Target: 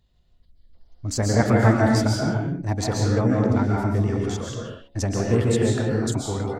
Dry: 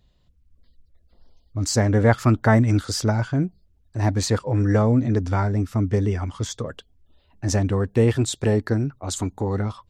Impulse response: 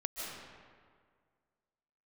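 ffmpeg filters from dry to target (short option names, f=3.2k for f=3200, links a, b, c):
-filter_complex "[0:a]atempo=1.5,bandreject=f=69.64:t=h:w=4,bandreject=f=139.28:t=h:w=4,bandreject=f=208.92:t=h:w=4,bandreject=f=278.56:t=h:w=4,bandreject=f=348.2:t=h:w=4,bandreject=f=417.84:t=h:w=4,bandreject=f=487.48:t=h:w=4,bandreject=f=557.12:t=h:w=4,bandreject=f=626.76:t=h:w=4,bandreject=f=696.4:t=h:w=4,bandreject=f=766.04:t=h:w=4,bandreject=f=835.68:t=h:w=4[a];[1:a]atrim=start_sample=2205,afade=t=out:st=0.42:d=0.01,atrim=end_sample=18963,asetrate=48510,aresample=44100[b];[a][b]afir=irnorm=-1:irlink=0"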